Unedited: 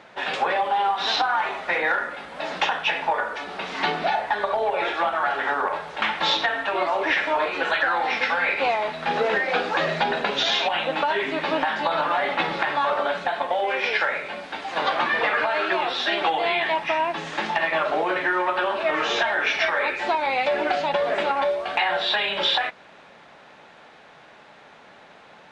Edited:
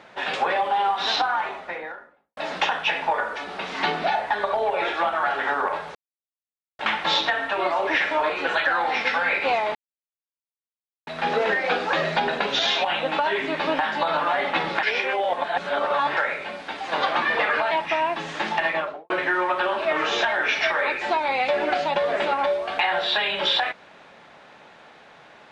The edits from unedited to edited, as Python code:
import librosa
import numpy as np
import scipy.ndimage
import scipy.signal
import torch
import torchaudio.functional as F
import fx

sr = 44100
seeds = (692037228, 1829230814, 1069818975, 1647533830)

y = fx.studio_fade_out(x, sr, start_s=1.1, length_s=1.27)
y = fx.studio_fade_out(y, sr, start_s=17.65, length_s=0.43)
y = fx.edit(y, sr, fx.insert_silence(at_s=5.95, length_s=0.84),
    fx.insert_silence(at_s=8.91, length_s=1.32),
    fx.reverse_span(start_s=12.67, length_s=1.34),
    fx.cut(start_s=15.55, length_s=1.14), tone=tone)